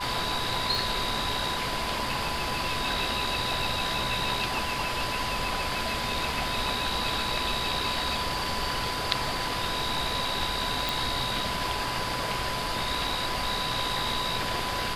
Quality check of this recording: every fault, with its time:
whine 1 kHz -34 dBFS
0.75 s: pop
10.89 s: pop

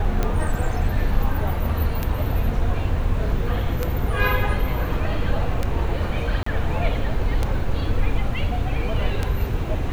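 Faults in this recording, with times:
tick 33 1/3 rpm -9 dBFS
6.43–6.46 s: dropout 34 ms

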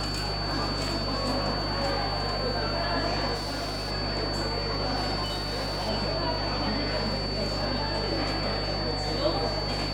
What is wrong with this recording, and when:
crackle 16 per s -37 dBFS
hum 50 Hz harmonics 3 -34 dBFS
whine 4.5 kHz -33 dBFS
3.34–3.92 s: clipped -28.5 dBFS
5.24–5.90 s: clipped -26.5 dBFS

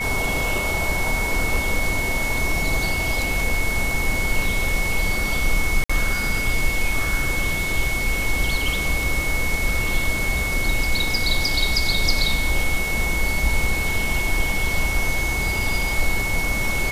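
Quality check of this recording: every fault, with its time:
whine 2.2 kHz -24 dBFS
5.84–5.89 s: dropout 55 ms

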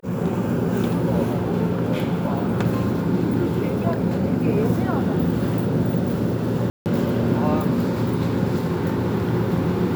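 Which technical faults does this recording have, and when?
6.70–6.86 s: dropout 159 ms

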